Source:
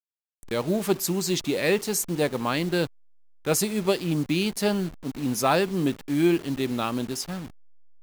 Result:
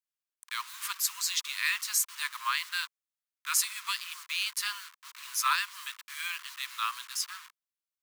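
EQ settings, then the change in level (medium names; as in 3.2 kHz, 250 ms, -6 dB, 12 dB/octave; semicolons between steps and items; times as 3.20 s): steep high-pass 1 kHz 96 dB/octave; 0.0 dB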